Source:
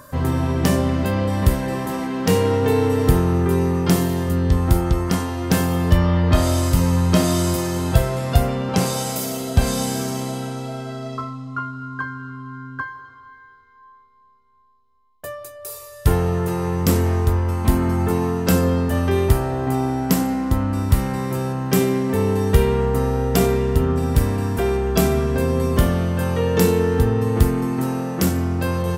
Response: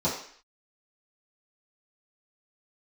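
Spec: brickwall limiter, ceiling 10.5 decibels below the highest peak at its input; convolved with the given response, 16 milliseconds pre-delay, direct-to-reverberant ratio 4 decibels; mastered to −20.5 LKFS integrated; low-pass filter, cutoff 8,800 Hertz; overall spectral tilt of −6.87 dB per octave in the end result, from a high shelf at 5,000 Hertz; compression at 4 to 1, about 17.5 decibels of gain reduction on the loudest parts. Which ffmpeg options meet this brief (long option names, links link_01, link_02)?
-filter_complex "[0:a]lowpass=8800,highshelf=frequency=5000:gain=-7.5,acompressor=threshold=-32dB:ratio=4,alimiter=level_in=3.5dB:limit=-24dB:level=0:latency=1,volume=-3.5dB,asplit=2[link_01][link_02];[1:a]atrim=start_sample=2205,adelay=16[link_03];[link_02][link_03]afir=irnorm=-1:irlink=0,volume=-15dB[link_04];[link_01][link_04]amix=inputs=2:normalize=0,volume=13dB"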